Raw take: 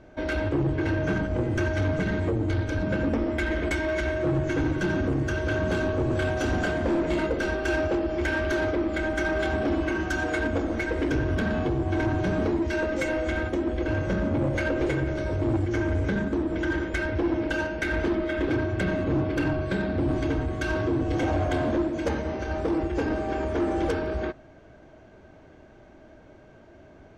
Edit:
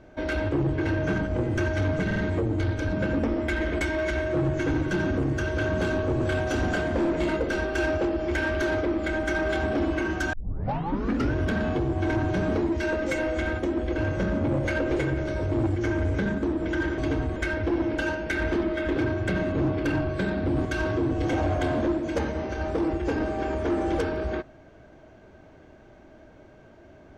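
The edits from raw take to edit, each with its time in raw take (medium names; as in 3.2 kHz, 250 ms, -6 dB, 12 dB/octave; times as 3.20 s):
2.06 s: stutter 0.05 s, 3 plays
10.23 s: tape start 1.01 s
20.17–20.55 s: move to 16.88 s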